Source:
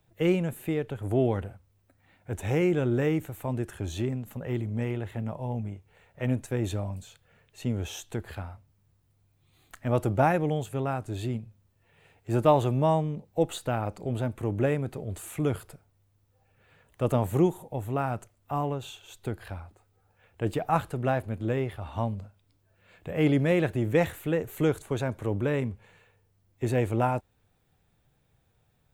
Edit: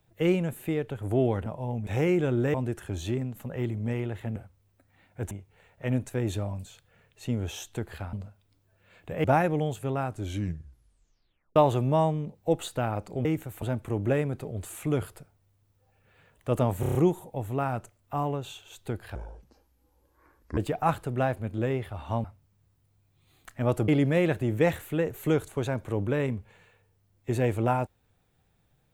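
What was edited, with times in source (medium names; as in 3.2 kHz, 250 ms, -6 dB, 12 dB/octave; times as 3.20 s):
1.46–2.41 s: swap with 5.27–5.68 s
3.08–3.45 s: move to 14.15 s
8.50–10.14 s: swap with 22.11–23.22 s
11.06 s: tape stop 1.40 s
17.33 s: stutter 0.03 s, 6 plays
19.53–20.44 s: speed 64%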